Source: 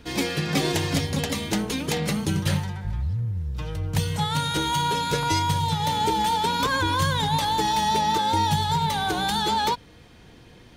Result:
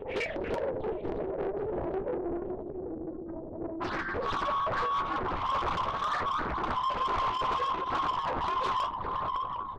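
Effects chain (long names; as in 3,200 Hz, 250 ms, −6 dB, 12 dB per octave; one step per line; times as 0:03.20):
on a send: feedback delay with all-pass diffusion 660 ms, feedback 45%, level −6.5 dB
on the sum: spectral peaks only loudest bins 8
in parallel at −2.5 dB: brickwall limiter −23 dBFS, peak gain reduction 10 dB
on the sum: single-sideband voice off tune +170 Hz 180–2,800 Hz
upward compression, threshold −32 dBFS
tempo change 1.1×
repeating echo 757 ms, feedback 25%, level −14 dB
linear-prediction vocoder at 8 kHz whisper
soft clipping −22.5 dBFS, distortion −10 dB
flanger 0.21 Hz, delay 9.6 ms, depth 5 ms, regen −51%
highs frequency-modulated by the lows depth 0.79 ms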